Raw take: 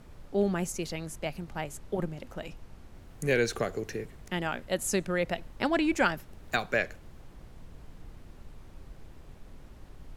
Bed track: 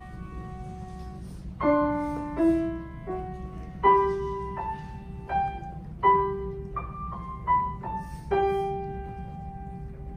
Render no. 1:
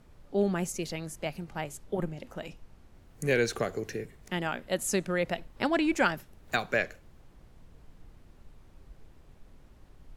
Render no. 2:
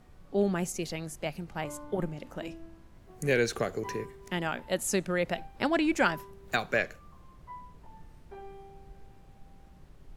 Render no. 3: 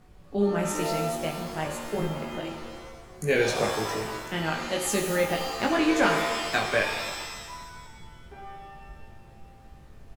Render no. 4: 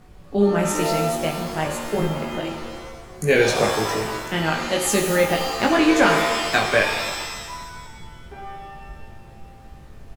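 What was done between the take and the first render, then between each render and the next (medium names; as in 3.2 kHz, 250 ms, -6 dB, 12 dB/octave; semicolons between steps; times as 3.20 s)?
noise print and reduce 6 dB
add bed track -22 dB
doubling 19 ms -2.5 dB; pitch-shifted reverb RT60 1.4 s, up +7 st, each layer -2 dB, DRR 4.5 dB
trim +6.5 dB; peak limiter -3 dBFS, peak gain reduction 1 dB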